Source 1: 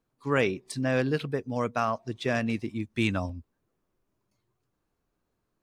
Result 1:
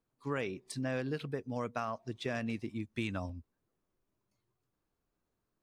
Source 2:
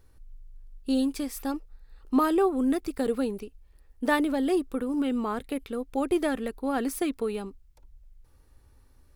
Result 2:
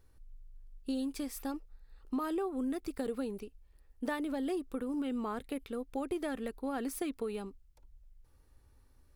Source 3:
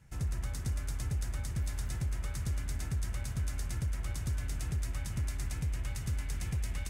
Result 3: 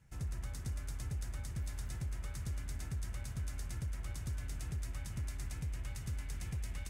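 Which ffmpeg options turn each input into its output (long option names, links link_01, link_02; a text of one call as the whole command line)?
ffmpeg -i in.wav -af "acompressor=threshold=-26dB:ratio=6,volume=-5.5dB" out.wav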